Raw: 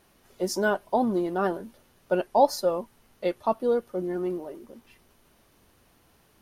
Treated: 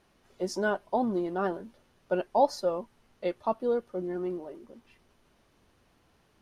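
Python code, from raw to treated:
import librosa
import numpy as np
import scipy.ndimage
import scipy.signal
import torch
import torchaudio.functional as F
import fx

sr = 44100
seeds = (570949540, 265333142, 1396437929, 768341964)

y = fx.air_absorb(x, sr, metres=51.0)
y = y * librosa.db_to_amplitude(-3.5)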